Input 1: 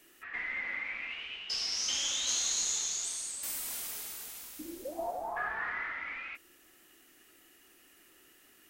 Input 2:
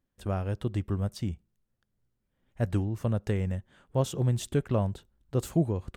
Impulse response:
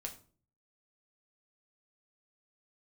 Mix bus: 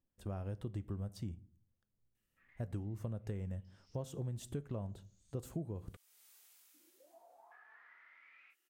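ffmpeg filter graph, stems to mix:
-filter_complex "[0:a]highpass=frequency=1000:poles=1,acompressor=threshold=-41dB:ratio=5,flanger=delay=22.5:depth=6.1:speed=1.8,adelay=2150,volume=-15dB,afade=type=in:start_time=5.43:duration=0.39:silence=0.421697[link_01];[1:a]equalizer=frequency=2700:width_type=o:width=2.8:gain=-5,volume=-9dB,asplit=3[link_02][link_03][link_04];[link_03]volume=-7.5dB[link_05];[link_04]apad=whole_len=478227[link_06];[link_01][link_06]sidechaincompress=threshold=-53dB:ratio=10:attack=26:release=400[link_07];[2:a]atrim=start_sample=2205[link_08];[link_05][link_08]afir=irnorm=-1:irlink=0[link_09];[link_07][link_02][link_09]amix=inputs=3:normalize=0,acompressor=threshold=-37dB:ratio=6"

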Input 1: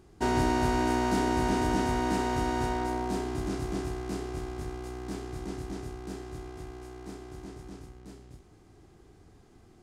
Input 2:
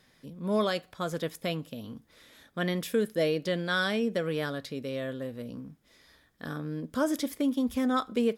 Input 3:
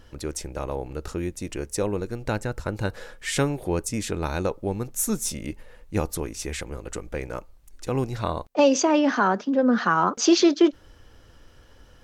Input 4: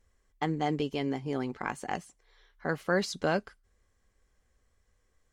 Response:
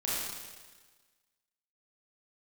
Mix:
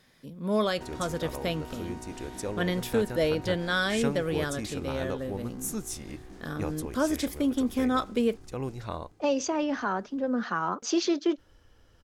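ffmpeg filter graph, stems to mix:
-filter_complex "[0:a]acompressor=threshold=-40dB:ratio=2.5,adelay=600,volume=-6dB[link_01];[1:a]volume=1dB[link_02];[2:a]adelay=650,volume=-8.5dB[link_03];[link_01][link_02][link_03]amix=inputs=3:normalize=0"

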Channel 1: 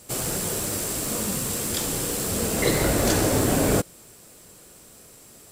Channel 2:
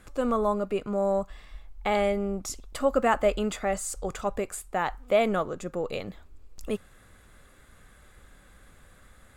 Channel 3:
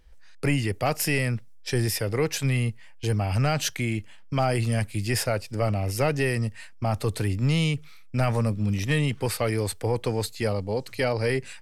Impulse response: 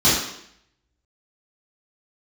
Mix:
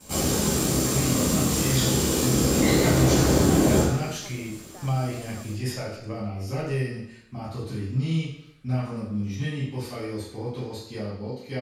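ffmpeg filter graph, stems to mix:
-filter_complex "[0:a]flanger=delay=3.6:depth=4.9:regen=64:speed=0.4:shape=sinusoidal,aeval=exprs='val(0)*sin(2*PI*34*n/s)':channel_layout=same,volume=0dB,asplit=2[link_01][link_02];[link_02]volume=-9.5dB[link_03];[1:a]acompressor=threshold=-49dB:ratio=1.5,volume=-11.5dB,asplit=2[link_04][link_05];[2:a]adelay=500,volume=-12dB,asplit=2[link_06][link_07];[link_07]volume=-17dB[link_08];[link_05]apad=whole_len=534096[link_09];[link_06][link_09]sidechaingate=range=-33dB:threshold=-55dB:ratio=16:detection=peak[link_10];[3:a]atrim=start_sample=2205[link_11];[link_03][link_08]amix=inputs=2:normalize=0[link_12];[link_12][link_11]afir=irnorm=-1:irlink=0[link_13];[link_01][link_04][link_10][link_13]amix=inputs=4:normalize=0,acompressor=threshold=-19dB:ratio=2"

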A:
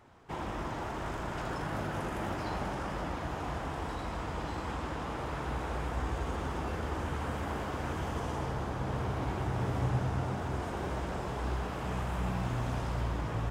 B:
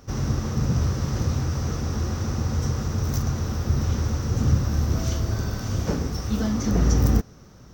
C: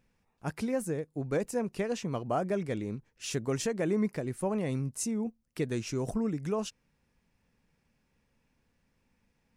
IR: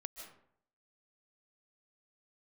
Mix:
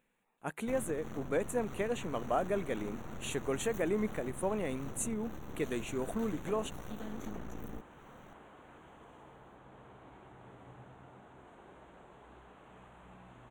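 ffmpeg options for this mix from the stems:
-filter_complex "[0:a]lowpass=8200,adelay=850,volume=-18dB[link_01];[1:a]acompressor=threshold=-30dB:ratio=16,aeval=exprs='0.1*(cos(1*acos(clip(val(0)/0.1,-1,1)))-cos(1*PI/2))+0.0141*(cos(8*acos(clip(val(0)/0.1,-1,1)))-cos(8*PI/2))':channel_layout=same,adelay=600,volume=-7dB[link_02];[2:a]lowshelf=frequency=150:gain=-10,volume=0dB[link_03];[link_01][link_02][link_03]amix=inputs=3:normalize=0,asuperstop=centerf=5100:order=4:qfactor=1.7,equalizer=frequency=80:width=1:gain=-13.5"

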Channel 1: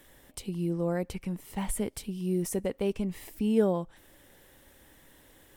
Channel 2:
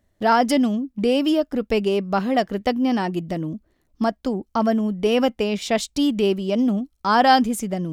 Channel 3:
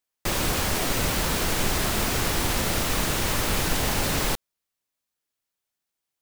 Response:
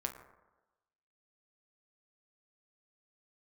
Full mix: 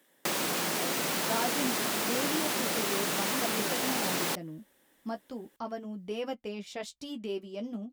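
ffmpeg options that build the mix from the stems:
-filter_complex "[0:a]volume=-8dB[link_01];[1:a]flanger=delay=10:depth=3.6:regen=-28:speed=0.38:shape=sinusoidal,adelay=1050,volume=-12dB[link_02];[2:a]volume=1dB[link_03];[link_01][link_03]amix=inputs=2:normalize=0,highpass=frequency=170:width=0.5412,highpass=frequency=170:width=1.3066,acompressor=threshold=-29dB:ratio=3,volume=0dB[link_04];[link_02][link_04]amix=inputs=2:normalize=0,lowshelf=frequency=67:gain=-11.5"

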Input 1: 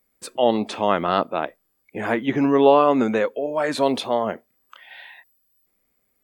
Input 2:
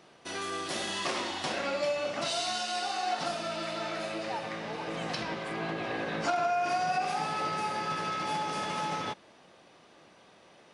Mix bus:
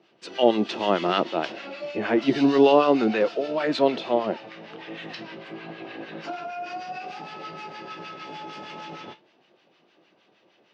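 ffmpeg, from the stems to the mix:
ffmpeg -i stem1.wav -i stem2.wav -filter_complex "[0:a]volume=0.5dB[link_01];[1:a]flanger=delay=9.2:depth=9.7:regen=-54:speed=0.29:shape=sinusoidal,volume=1.5dB[link_02];[link_01][link_02]amix=inputs=2:normalize=0,acrossover=split=1000[link_03][link_04];[link_03]aeval=exprs='val(0)*(1-0.7/2+0.7/2*cos(2*PI*6.5*n/s))':channel_layout=same[link_05];[link_04]aeval=exprs='val(0)*(1-0.7/2-0.7/2*cos(2*PI*6.5*n/s))':channel_layout=same[link_06];[link_05][link_06]amix=inputs=2:normalize=0,highpass=frequency=120:width=0.5412,highpass=frequency=120:width=1.3066,equalizer=frequency=350:width_type=q:width=4:gain=7,equalizer=frequency=1100:width_type=q:width=4:gain=-3,equalizer=frequency=2800:width_type=q:width=4:gain=6,lowpass=frequency=5300:width=0.5412,lowpass=frequency=5300:width=1.3066" out.wav

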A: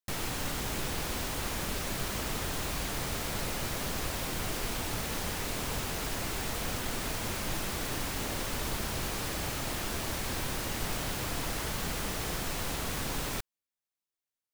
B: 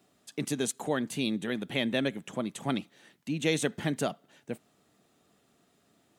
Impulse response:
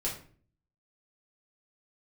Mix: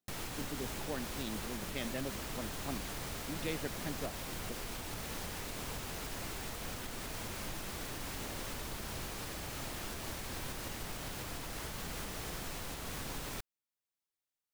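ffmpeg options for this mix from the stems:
-filter_complex "[0:a]alimiter=level_in=5dB:limit=-24dB:level=0:latency=1:release=461,volume=-5dB,volume=-2dB[link_01];[1:a]afwtdn=0.0158,volume=-11dB[link_02];[link_01][link_02]amix=inputs=2:normalize=0"

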